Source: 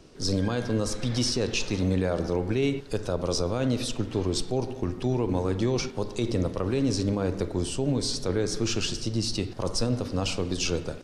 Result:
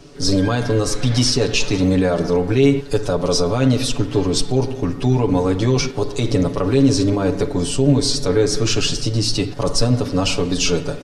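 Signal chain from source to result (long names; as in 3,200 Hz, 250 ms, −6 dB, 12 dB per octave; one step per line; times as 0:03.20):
comb filter 7 ms, depth 89%
level +7 dB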